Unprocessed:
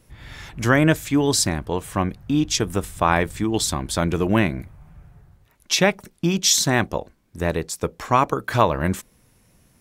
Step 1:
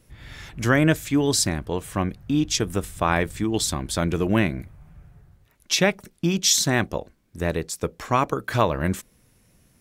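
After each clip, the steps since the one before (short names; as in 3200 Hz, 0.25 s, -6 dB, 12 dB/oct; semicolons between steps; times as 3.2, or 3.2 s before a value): bell 920 Hz -3.5 dB 0.78 oct; gain -1.5 dB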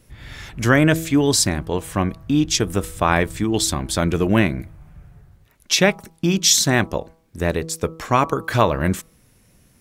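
de-hum 162.4 Hz, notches 8; gain +4 dB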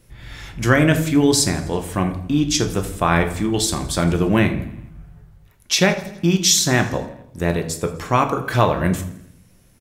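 feedback echo 83 ms, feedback 59%, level -19 dB; reverb RT60 0.60 s, pre-delay 6 ms, DRR 6 dB; gain -1 dB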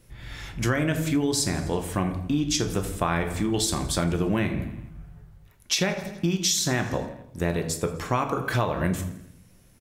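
compressor 6:1, threshold -18 dBFS, peak gain reduction 9 dB; gain -2.5 dB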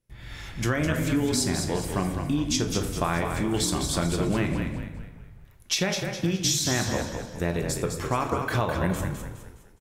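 gate with hold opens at -44 dBFS; on a send: frequency-shifting echo 0.207 s, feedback 40%, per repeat -38 Hz, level -6 dB; on the sum: gain -1.5 dB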